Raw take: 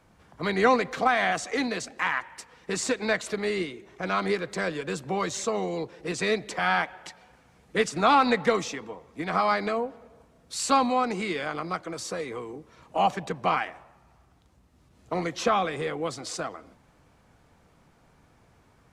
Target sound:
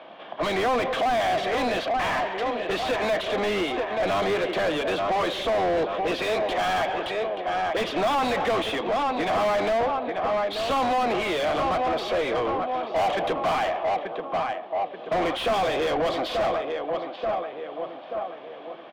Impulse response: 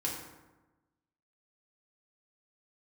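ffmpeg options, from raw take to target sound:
-filter_complex "[0:a]highpass=370,equalizer=frequency=440:width_type=q:width=4:gain=-6,equalizer=frequency=640:width_type=q:width=4:gain=6,equalizer=frequency=920:width_type=q:width=4:gain=-6,equalizer=frequency=1400:width_type=q:width=4:gain=-9,equalizer=frequency=2000:width_type=q:width=4:gain=-6,equalizer=frequency=3300:width_type=q:width=4:gain=10,lowpass=frequency=3500:width=0.5412,lowpass=frequency=3500:width=1.3066,asplit=2[link_01][link_02];[link_02]adelay=883,lowpass=frequency=1900:poles=1,volume=-13dB,asplit=2[link_03][link_04];[link_04]adelay=883,lowpass=frequency=1900:poles=1,volume=0.47,asplit=2[link_05][link_06];[link_06]adelay=883,lowpass=frequency=1900:poles=1,volume=0.47,asplit=2[link_07][link_08];[link_08]adelay=883,lowpass=frequency=1900:poles=1,volume=0.47,asplit=2[link_09][link_10];[link_10]adelay=883,lowpass=frequency=1900:poles=1,volume=0.47[link_11];[link_01][link_03][link_05][link_07][link_09][link_11]amix=inputs=6:normalize=0,asplit=2[link_12][link_13];[link_13]highpass=frequency=720:poles=1,volume=38dB,asoftclip=type=tanh:threshold=-9dB[link_14];[link_12][link_14]amix=inputs=2:normalize=0,lowpass=frequency=1100:poles=1,volume=-6dB,volume=-5.5dB"

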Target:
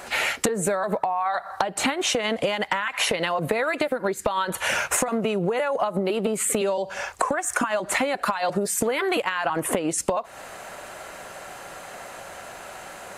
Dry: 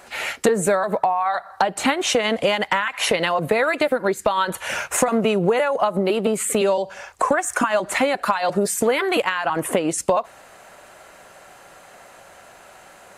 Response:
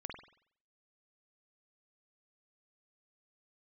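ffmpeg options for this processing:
-af "acompressor=threshold=-27dB:ratio=12,volume=6.5dB"

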